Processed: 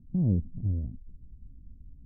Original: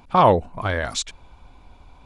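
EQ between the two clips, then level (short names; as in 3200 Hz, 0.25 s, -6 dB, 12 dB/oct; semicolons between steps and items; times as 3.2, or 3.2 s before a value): inverse Chebyshev low-pass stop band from 1400 Hz, stop band 80 dB; 0.0 dB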